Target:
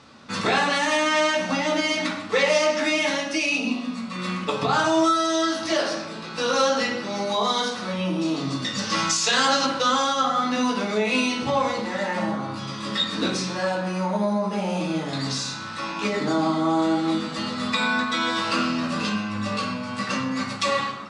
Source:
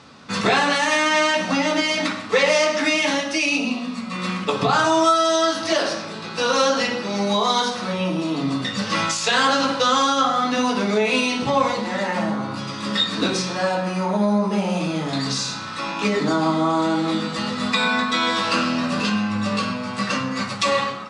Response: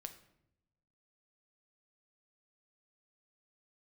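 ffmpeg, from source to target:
-filter_complex "[0:a]asettb=1/sr,asplit=3[s0][s1][s2];[s0]atrim=end=8.214[s3];[s1]atrim=start=8.21:end=9.66,asetpts=PTS-STARTPTS,afade=t=in:d=0.004:c=qsin,afade=t=out:st=1.446:d=0.004:c=qsin,equalizer=f=5900:t=o:w=1:g=7[s4];[s2]atrim=start=9.656[s5];[s3][s4]acrossfade=d=0.004:c1=hsin:c2=qsin[s6];[s6][s5]acrossfade=d=0.004:c1=qsin:c2=hsin[s7];[1:a]atrim=start_sample=2205,asetrate=83790,aresample=44100[s8];[s7][s8]afir=irnorm=-1:irlink=0,volume=2.24"

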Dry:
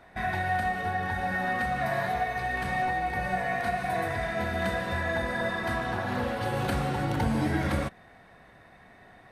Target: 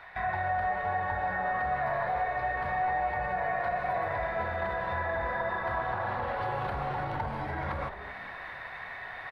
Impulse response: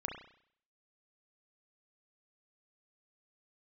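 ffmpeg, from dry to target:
-filter_complex "[0:a]flanger=delay=0.7:depth=9.3:regen=-89:speed=0.9:shape=sinusoidal,acrossover=split=1100[s0][s1];[s1]acompressor=threshold=0.00158:ratio=5[s2];[s0][s2]amix=inputs=2:normalize=0,alimiter=level_in=1.68:limit=0.0631:level=0:latency=1:release=16,volume=0.596,areverse,acompressor=mode=upward:threshold=0.00794:ratio=2.5,areverse,equalizer=f=250:t=o:w=1:g=-12,equalizer=f=1000:t=o:w=1:g=9,equalizer=f=2000:t=o:w=1:g=10,equalizer=f=4000:t=o:w=1:g=7,equalizer=f=8000:t=o:w=1:g=-9,asplit=4[s3][s4][s5][s6];[s4]adelay=219,afreqshift=-140,volume=0.251[s7];[s5]adelay=438,afreqshift=-280,volume=0.0804[s8];[s6]adelay=657,afreqshift=-420,volume=0.0257[s9];[s3][s7][s8][s9]amix=inputs=4:normalize=0,volume=1.19"

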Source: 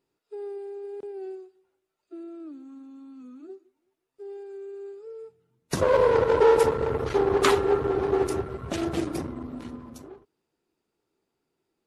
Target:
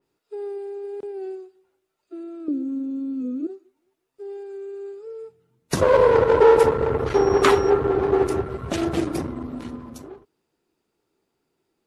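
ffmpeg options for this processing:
-filter_complex "[0:a]asettb=1/sr,asplit=3[s0][s1][s2];[s0]atrim=end=2.484[s3];[s1]atrim=start=2.48:end=3.47,asetpts=PTS-STARTPTS,afade=t=in:d=0.004:c=qsin,afade=t=out:st=0.986:d=0.004:c=qsin,lowshelf=f=650:t=q:w=3:g=10.5[s4];[s2]atrim=start=3.466[s5];[s3][s4]acrossfade=d=0.004:c1=hsin:c2=qsin[s6];[s6][s5]acrossfade=d=0.004:c1=qsin:c2=hsin,asettb=1/sr,asplit=3[s7][s8][s9];[s7]atrim=end=7.144[s10];[s8]atrim=start=7.14:end=7.7,asetpts=PTS-STARTPTS,afade=t=in:d=0.004:c=qsin,afade=t=out:st=0.556:d=0.004:c=qsin,aeval=exprs='val(0)+0.00891*sin(2*PI*5600*n/s)':c=same[s11];[s9]atrim=start=7.696[s12];[s10][s11]acrossfade=d=0.004:c1=hsin:c2=qsin[s13];[s13][s12]acrossfade=d=0.004:c1=qsin:c2=hsin,adynamicequalizer=threshold=0.00794:dfrequency=3000:dqfactor=0.7:tfrequency=3000:tqfactor=0.7:attack=5:release=100:ratio=0.375:range=3:mode=cutabove:tftype=highshelf,volume=1.68"

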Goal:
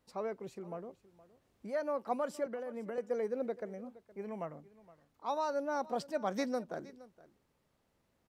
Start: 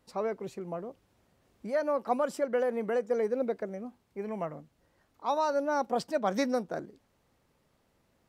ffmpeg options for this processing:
-filter_complex "[0:a]asettb=1/sr,asplit=3[s0][s1][s2];[s0]atrim=end=2.464[s3];[s1]atrim=start=2.46:end=2.98,asetpts=PTS-STARTPTS,afade=t=in:d=0.004:c=qsin,afade=t=out:st=0.516:d=0.004:c=qsin,acrossover=split=230[s4][s5];[s5]acompressor=threshold=0.02:ratio=5[s6];[s4][s6]amix=inputs=2:normalize=0[s7];[s2]atrim=start=2.976[s8];[s3][s7]acrossfade=d=0.004:c1=hsin:c2=qsin[s9];[s9][s8]acrossfade=d=0.004:c1=qsin:c2=hsin,asplit=2[s10][s11];[s11]aecho=0:1:468:0.106[s12];[s10][s12]amix=inputs=2:normalize=0,volume=0.501"

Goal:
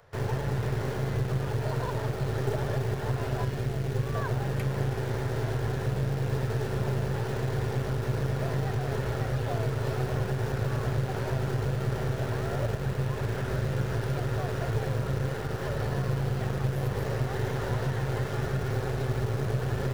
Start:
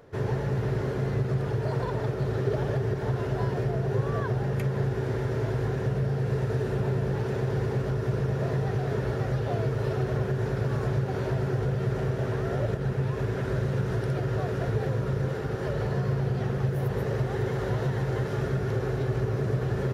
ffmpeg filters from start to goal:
-filter_complex "[0:a]asettb=1/sr,asplit=3[s0][s1][s2];[s0]atrim=end=3.444[s3];[s1]atrim=start=3.44:end=4.15,asetpts=PTS-STARTPTS,afade=t=in:d=0.004:c=qsin,afade=t=out:st=0.706:d=0.004:c=qsin,equalizer=f=850:w=1.1:g=-9.5[s4];[s2]atrim=start=4.146[s5];[s3][s4]acrossfade=d=0.004:c1=hsin:c2=qsin[s6];[s6][s5]acrossfade=d=0.004:c1=qsin:c2=hsin,acrossover=split=150|530|1900[s7][s8][s9][s10];[s8]acrusher=bits=4:dc=4:mix=0:aa=0.000001[s11];[s7][s11][s9][s10]amix=inputs=4:normalize=0"

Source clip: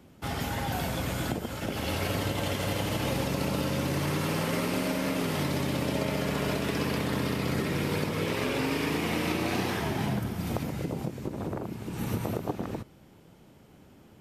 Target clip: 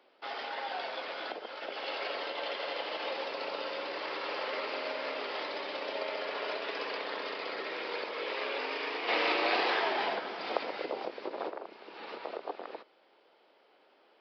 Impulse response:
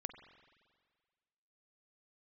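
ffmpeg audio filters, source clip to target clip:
-filter_complex "[0:a]highpass=f=450:w=0.5412,highpass=f=450:w=1.3066,asplit=3[s0][s1][s2];[s0]afade=t=out:st=9.07:d=0.02[s3];[s1]acontrast=76,afade=t=in:st=9.07:d=0.02,afade=t=out:st=11.49:d=0.02[s4];[s2]afade=t=in:st=11.49:d=0.02[s5];[s3][s4][s5]amix=inputs=3:normalize=0,aresample=11025,aresample=44100,volume=0.75"

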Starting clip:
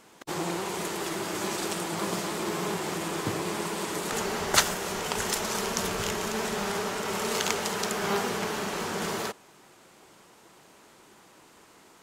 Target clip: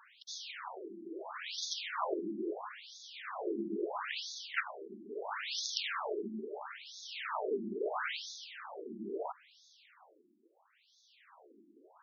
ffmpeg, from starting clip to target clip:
-af "tremolo=f=0.52:d=0.71,afftfilt=real='re*between(b*sr/1024,260*pow(4800/260,0.5+0.5*sin(2*PI*0.75*pts/sr))/1.41,260*pow(4800/260,0.5+0.5*sin(2*PI*0.75*pts/sr))*1.41)':imag='im*between(b*sr/1024,260*pow(4800/260,0.5+0.5*sin(2*PI*0.75*pts/sr))/1.41,260*pow(4800/260,0.5+0.5*sin(2*PI*0.75*pts/sr))*1.41)':win_size=1024:overlap=0.75,volume=1.26"

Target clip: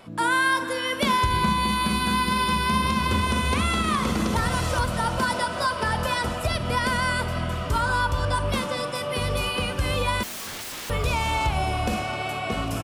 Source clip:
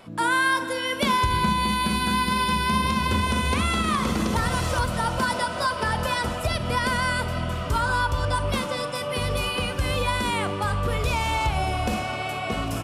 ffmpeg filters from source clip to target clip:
-filter_complex "[0:a]asettb=1/sr,asplit=3[s0][s1][s2];[s0]atrim=end=10.234[s3];[s1]atrim=start=10.23:end=10.9,asetpts=PTS-STARTPTS,afade=t=in:d=0.004:c=qsin,afade=t=out:st=0.666:d=0.004:c=qsin,aeval=exprs='(mod(33.5*val(0)+1,2)-1)/33.5':c=same[s4];[s2]atrim=start=10.896[s5];[s3][s4]acrossfade=d=0.004:c1=hsin:c2=qsin[s6];[s6][s5]acrossfade=d=0.004:c1=qsin:c2=hsin,asplit=4[s7][s8][s9][s10];[s8]adelay=338,afreqshift=140,volume=0.0794[s11];[s9]adelay=676,afreqshift=280,volume=0.038[s12];[s10]adelay=1014,afreqshift=420,volume=0.0182[s13];[s7][s11][s12][s13]amix=inputs=4:normalize=0"

